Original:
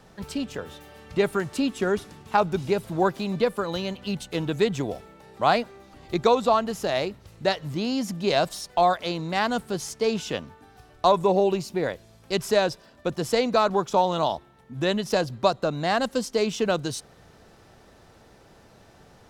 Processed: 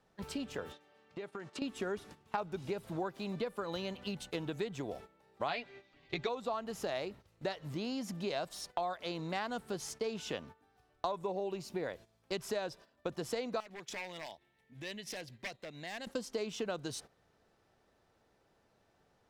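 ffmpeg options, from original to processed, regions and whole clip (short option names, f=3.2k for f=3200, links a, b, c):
-filter_complex "[0:a]asettb=1/sr,asplit=3[a][b][c];[a]atrim=end=0.724[d];[b]atrim=start=0.72:end=1.62,asetpts=PTS-STARTPTS,afade=t=in:d=0.004:c=qsin,afade=t=out:st=0.896:d=0.004:c=qsin,highpass=170,lowpass=6.5k,acompressor=threshold=-33dB:ratio=16:attack=3.2:release=140:knee=1:detection=peak[e];[c]atrim=start=1.616[f];[d][e]acrossfade=d=0.004:c1=hsin:c2=qsin[g];[g][f]acrossfade=d=0.004:c1=qsin:c2=hsin,asettb=1/sr,asplit=3[h][i][j];[h]atrim=end=5.484[k];[i]atrim=start=5.48:end=6.29,asetpts=PTS-STARTPTS,afade=t=in:d=0.004:c=qsin,afade=t=out:st=0.806:d=0.004:c=qsin,lowpass=3.8k,highshelf=f=1.7k:t=q:w=1.5:g=7.5,aecho=1:1:7.1:0.57,atrim=end_sample=35721[l];[j]atrim=start=6.286[m];[k][l]acrossfade=d=0.004:c1=hsin:c2=qsin[n];[n][m]acrossfade=d=0.004:c1=qsin:c2=hsin,asettb=1/sr,asplit=3[o][p][q];[o]atrim=end=13.604[r];[p]atrim=start=13.6:end=16.07,asetpts=PTS-STARTPTS,afade=t=in:d=0.004:c=qsin,afade=t=out:st=2.466:d=0.004:c=qsin,aeval=exprs='0.141*(abs(mod(val(0)/0.141+3,4)-2)-1)':c=same,acompressor=threshold=-39dB:ratio=5:attack=3.2:release=140:knee=1:detection=peak,highshelf=f=1.6k:t=q:w=3:g=6[s];[q]atrim=start=16.066[t];[r][s]acrossfade=d=0.004:c1=hsin:c2=qsin[u];[u][t]acrossfade=d=0.004:c1=qsin:c2=hsin,agate=range=-13dB:threshold=-41dB:ratio=16:detection=peak,acompressor=threshold=-29dB:ratio=6,bass=f=250:g=-4,treble=f=4k:g=-3,volume=-4.5dB"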